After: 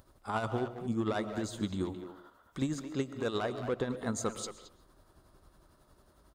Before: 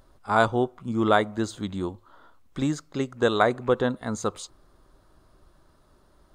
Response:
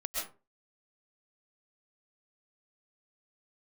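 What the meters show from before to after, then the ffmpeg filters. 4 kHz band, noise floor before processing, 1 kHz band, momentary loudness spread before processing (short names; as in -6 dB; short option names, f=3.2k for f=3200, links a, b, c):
-8.5 dB, -60 dBFS, -12.5 dB, 11 LU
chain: -filter_complex "[0:a]asoftclip=type=tanh:threshold=-15dB,highpass=40,acompressor=threshold=-26dB:ratio=10,tremolo=f=11:d=0.54,highshelf=f=8.1k:g=8,asplit=2[a][b];[b]adelay=220,highpass=300,lowpass=3.4k,asoftclip=type=hard:threshold=-29.5dB,volume=-7dB[c];[a][c]amix=inputs=2:normalize=0,asplit=2[d][e];[1:a]atrim=start_sample=2205,lowshelf=f=480:g=11.5[f];[e][f]afir=irnorm=-1:irlink=0,volume=-17.5dB[g];[d][g]amix=inputs=2:normalize=0,volume=-2.5dB"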